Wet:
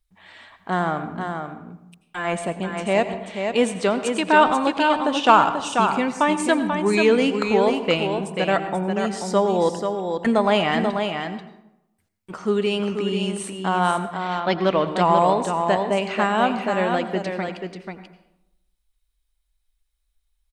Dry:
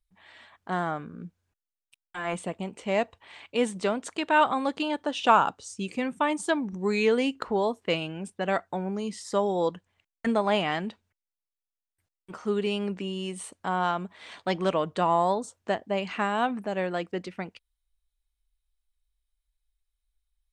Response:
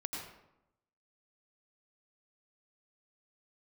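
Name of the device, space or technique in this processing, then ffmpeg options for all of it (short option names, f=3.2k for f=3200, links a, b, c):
saturated reverb return: -filter_complex "[0:a]asplit=2[a][b];[1:a]atrim=start_sample=2205[c];[b][c]afir=irnorm=-1:irlink=0,asoftclip=type=tanh:threshold=-15dB,volume=-6.5dB[d];[a][d]amix=inputs=2:normalize=0,asettb=1/sr,asplit=3[e][f][g];[e]atrim=end=13.914[h];[f]atrim=start=13.91:end=14.87,asetpts=PTS-STARTPTS,afade=t=in:d=0.004:c=qsin,afade=t=out:st=0.956:d=0.004:c=qsin,lowpass=f=5.3k:w=0.5412,lowpass=f=5.3k:w=1.3066[i];[g]atrim=start=14.866[j];[h][i]acrossfade=d=0.004:c1=hsin:c2=qsin[k];[k][j]acrossfade=d=0.004:c1=qsin:c2=hsin,aecho=1:1:487:0.501,volume=3.5dB"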